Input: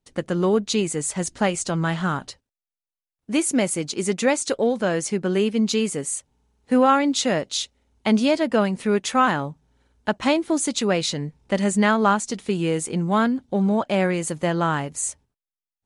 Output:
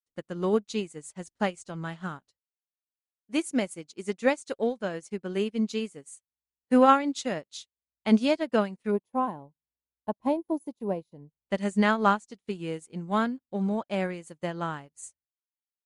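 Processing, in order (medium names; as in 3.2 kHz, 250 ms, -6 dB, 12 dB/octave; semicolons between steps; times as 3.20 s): time-frequency box 8.91–11.31 s, 1.1–9.7 kHz -17 dB; upward expansion 2.5:1, over -41 dBFS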